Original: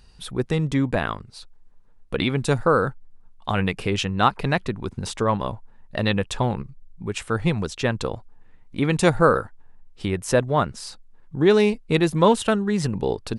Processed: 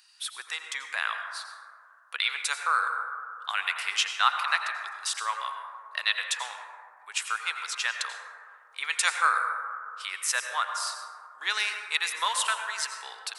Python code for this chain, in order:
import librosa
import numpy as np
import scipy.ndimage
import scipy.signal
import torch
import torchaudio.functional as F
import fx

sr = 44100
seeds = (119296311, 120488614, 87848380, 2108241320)

y = scipy.signal.sosfilt(scipy.signal.butter(4, 1200.0, 'highpass', fs=sr, output='sos'), x)
y = fx.high_shelf(y, sr, hz=4800.0, db=5.0)
y = fx.rev_plate(y, sr, seeds[0], rt60_s=2.2, hf_ratio=0.25, predelay_ms=75, drr_db=4.5)